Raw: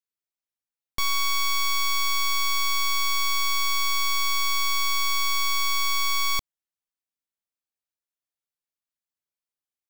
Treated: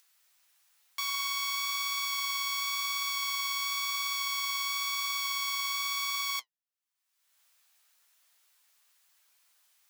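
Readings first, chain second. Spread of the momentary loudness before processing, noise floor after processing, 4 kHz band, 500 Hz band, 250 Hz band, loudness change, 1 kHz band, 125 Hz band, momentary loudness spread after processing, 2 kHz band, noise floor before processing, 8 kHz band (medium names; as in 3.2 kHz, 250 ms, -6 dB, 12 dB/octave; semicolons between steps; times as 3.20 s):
1 LU, -85 dBFS, -6.0 dB, under -15 dB, under -25 dB, -6.5 dB, -8.0 dB, no reading, 1 LU, -6.0 dB, under -85 dBFS, -6.0 dB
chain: high-pass 970 Hz 12 dB/octave; upward compressor, threshold -37 dBFS; flange 0.96 Hz, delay 5.5 ms, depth 8.2 ms, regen +52%; trim -2 dB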